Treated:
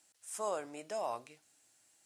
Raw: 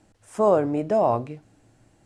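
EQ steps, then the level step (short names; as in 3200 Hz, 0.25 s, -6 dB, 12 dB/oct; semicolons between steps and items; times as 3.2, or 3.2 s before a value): differentiator; +3.5 dB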